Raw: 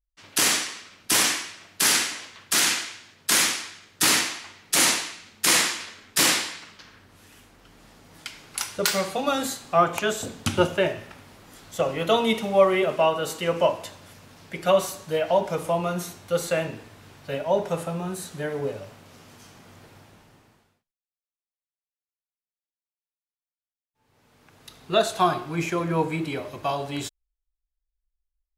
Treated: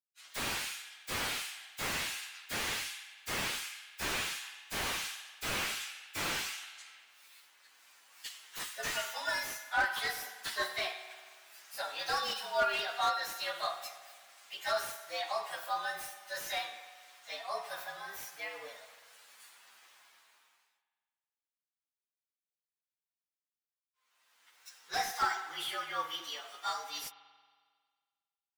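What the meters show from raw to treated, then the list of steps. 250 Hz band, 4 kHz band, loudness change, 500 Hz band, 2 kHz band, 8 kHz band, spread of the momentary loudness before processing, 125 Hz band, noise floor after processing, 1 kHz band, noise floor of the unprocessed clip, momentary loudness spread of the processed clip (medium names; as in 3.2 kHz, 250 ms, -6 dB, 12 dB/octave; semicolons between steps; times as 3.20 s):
-21.5 dB, -10.5 dB, -12.5 dB, -18.0 dB, -7.5 dB, -17.0 dB, 15 LU, -20.0 dB, under -85 dBFS, -9.0 dB, under -85 dBFS, 17 LU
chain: frequency axis rescaled in octaves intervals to 114%; high-pass 1.4 kHz 12 dB/octave; spring tank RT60 1.7 s, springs 45 ms, chirp 70 ms, DRR 10.5 dB; slew-rate limiter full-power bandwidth 77 Hz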